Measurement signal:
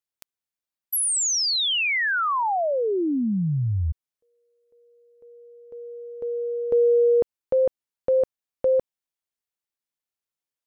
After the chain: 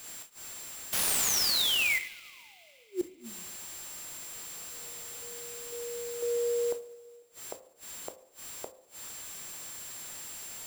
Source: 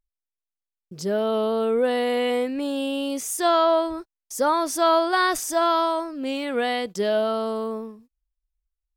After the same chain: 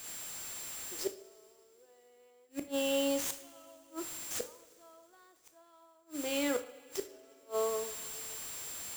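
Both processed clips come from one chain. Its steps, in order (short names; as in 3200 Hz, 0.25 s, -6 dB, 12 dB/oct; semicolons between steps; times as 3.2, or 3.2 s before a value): elliptic high-pass 290 Hz, stop band 50 dB; whine 7400 Hz -40 dBFS; flipped gate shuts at -20 dBFS, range -38 dB; two-slope reverb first 0.51 s, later 2.9 s, from -17 dB, DRR 7 dB; clock jitter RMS 0.021 ms; gain -3.5 dB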